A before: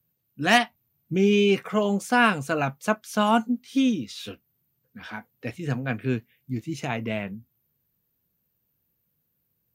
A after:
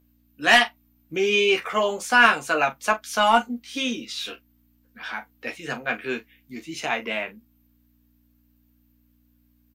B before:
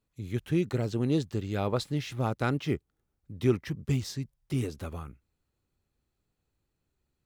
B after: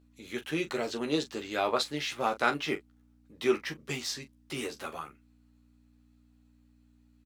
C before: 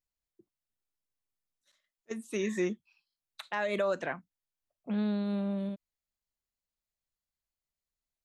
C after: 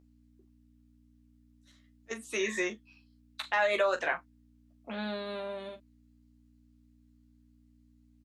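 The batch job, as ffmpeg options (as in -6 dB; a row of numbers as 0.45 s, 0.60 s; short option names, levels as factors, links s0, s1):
-filter_complex "[0:a]highpass=200,lowshelf=f=420:g=-6,aeval=exprs='val(0)+0.00141*(sin(2*PI*60*n/s)+sin(2*PI*2*60*n/s)/2+sin(2*PI*3*60*n/s)/3+sin(2*PI*4*60*n/s)/4+sin(2*PI*5*60*n/s)/5)':c=same,asplit=2[s0][s1];[s1]highpass=f=720:p=1,volume=3.98,asoftclip=type=tanh:threshold=0.708[s2];[s0][s2]amix=inputs=2:normalize=0,lowpass=f=5900:p=1,volume=0.501,asplit=2[s3][s4];[s4]aecho=0:1:13|42:0.596|0.237[s5];[s3][s5]amix=inputs=2:normalize=0,volume=0.891"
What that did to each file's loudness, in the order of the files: +2.0 LU, -1.5 LU, +1.0 LU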